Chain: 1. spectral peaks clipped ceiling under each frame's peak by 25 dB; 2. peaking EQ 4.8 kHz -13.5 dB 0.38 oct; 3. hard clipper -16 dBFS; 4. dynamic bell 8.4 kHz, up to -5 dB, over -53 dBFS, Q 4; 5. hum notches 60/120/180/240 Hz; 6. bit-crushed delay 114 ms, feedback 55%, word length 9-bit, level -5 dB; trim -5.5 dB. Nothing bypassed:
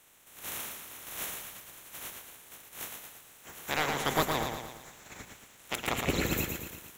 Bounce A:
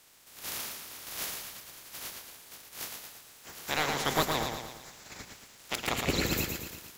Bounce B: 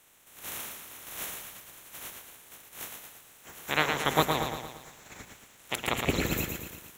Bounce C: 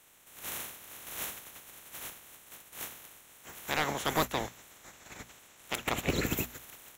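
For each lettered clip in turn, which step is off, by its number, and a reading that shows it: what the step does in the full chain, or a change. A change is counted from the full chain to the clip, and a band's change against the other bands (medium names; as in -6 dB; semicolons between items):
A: 2, 4 kHz band +3.0 dB; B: 3, distortion -8 dB; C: 6, momentary loudness spread change +1 LU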